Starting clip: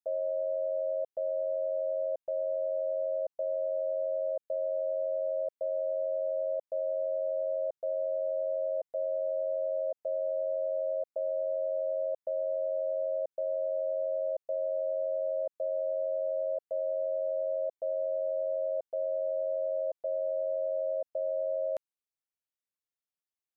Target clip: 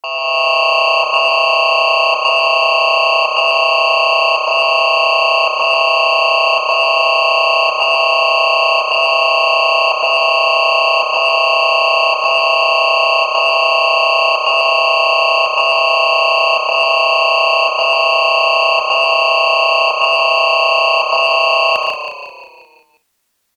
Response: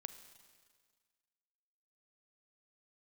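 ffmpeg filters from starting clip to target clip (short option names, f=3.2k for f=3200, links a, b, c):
-filter_complex "[0:a]aeval=exprs='0.0562*sin(PI/2*2.82*val(0)/0.0562)':c=same,dynaudnorm=f=190:g=3:m=8dB,asetrate=70004,aresample=44100,atempo=0.629961,afreqshift=-50,asplit=2[a][b];[b]aecho=0:1:74|110|144|196:0.316|0.422|0.708|0.15[c];[a][c]amix=inputs=2:normalize=0,acontrast=43,asplit=2[d][e];[e]asplit=6[f][g][h][i][j][k];[f]adelay=178,afreqshift=-32,volume=-8dB[l];[g]adelay=356,afreqshift=-64,volume=-13.7dB[m];[h]adelay=534,afreqshift=-96,volume=-19.4dB[n];[i]adelay=712,afreqshift=-128,volume=-25dB[o];[j]adelay=890,afreqshift=-160,volume=-30.7dB[p];[k]adelay=1068,afreqshift=-192,volume=-36.4dB[q];[l][m][n][o][p][q]amix=inputs=6:normalize=0[r];[d][r]amix=inputs=2:normalize=0,volume=1dB"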